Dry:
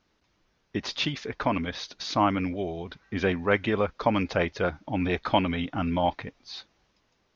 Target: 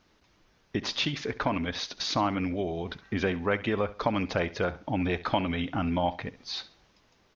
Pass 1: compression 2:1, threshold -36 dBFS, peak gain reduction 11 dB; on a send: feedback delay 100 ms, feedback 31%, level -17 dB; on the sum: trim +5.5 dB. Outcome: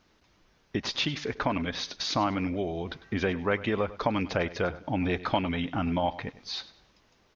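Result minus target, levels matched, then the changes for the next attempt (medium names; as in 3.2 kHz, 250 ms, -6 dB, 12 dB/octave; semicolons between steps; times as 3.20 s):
echo 32 ms late
change: feedback delay 68 ms, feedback 31%, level -17 dB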